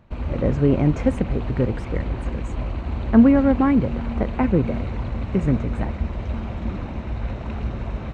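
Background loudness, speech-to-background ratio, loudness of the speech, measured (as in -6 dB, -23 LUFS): -29.0 LUFS, 8.0 dB, -21.0 LUFS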